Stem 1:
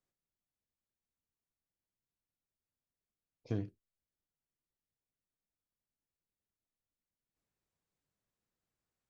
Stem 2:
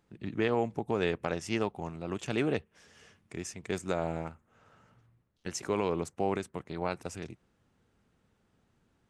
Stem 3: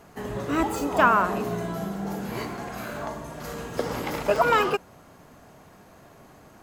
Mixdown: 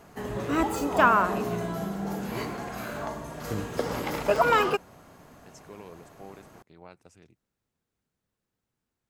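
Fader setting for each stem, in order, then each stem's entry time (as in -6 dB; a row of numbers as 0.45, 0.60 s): +2.5, -15.5, -1.0 dB; 0.00, 0.00, 0.00 s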